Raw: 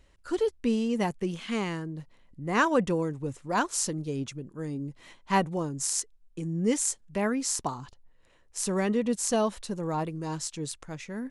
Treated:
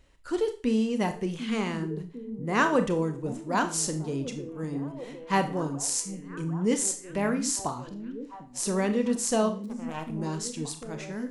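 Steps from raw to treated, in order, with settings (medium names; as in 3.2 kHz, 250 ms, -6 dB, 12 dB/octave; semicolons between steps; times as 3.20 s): 9.49–10.10 s: power-law waveshaper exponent 3; repeats whose band climbs or falls 748 ms, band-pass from 210 Hz, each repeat 0.7 oct, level -8.5 dB; Schroeder reverb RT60 0.37 s, combs from 25 ms, DRR 7.5 dB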